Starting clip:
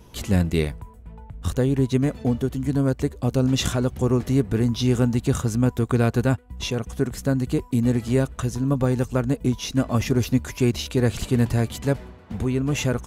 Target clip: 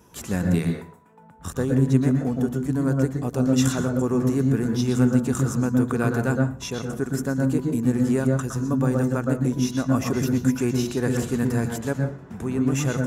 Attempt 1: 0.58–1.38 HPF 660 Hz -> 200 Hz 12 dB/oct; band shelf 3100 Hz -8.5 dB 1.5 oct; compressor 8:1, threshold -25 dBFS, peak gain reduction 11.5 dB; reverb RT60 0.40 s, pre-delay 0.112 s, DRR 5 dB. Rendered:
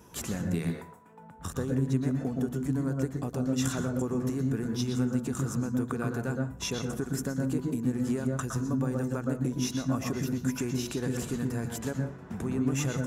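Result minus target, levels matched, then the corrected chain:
compressor: peak gain reduction +11.5 dB
0.58–1.38 HPF 660 Hz -> 200 Hz 12 dB/oct; band shelf 3100 Hz -8.5 dB 1.5 oct; reverb RT60 0.40 s, pre-delay 0.112 s, DRR 5 dB

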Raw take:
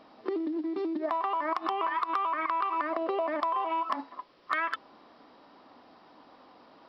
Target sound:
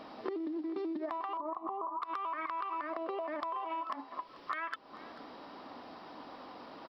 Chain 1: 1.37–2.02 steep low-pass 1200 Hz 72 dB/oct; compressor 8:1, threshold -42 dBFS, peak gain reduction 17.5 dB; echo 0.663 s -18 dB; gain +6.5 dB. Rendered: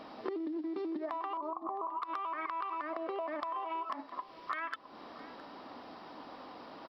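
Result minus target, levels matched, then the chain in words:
echo 0.224 s late
1.37–2.02 steep low-pass 1200 Hz 72 dB/oct; compressor 8:1, threshold -42 dBFS, peak gain reduction 17.5 dB; echo 0.439 s -18 dB; gain +6.5 dB

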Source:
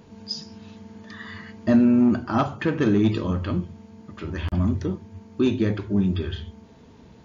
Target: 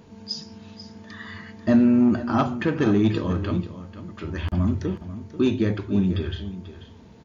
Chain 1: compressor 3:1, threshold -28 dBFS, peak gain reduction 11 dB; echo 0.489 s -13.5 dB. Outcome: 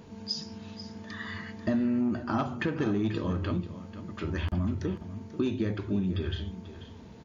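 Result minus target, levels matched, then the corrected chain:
compressor: peak gain reduction +11 dB
echo 0.489 s -13.5 dB

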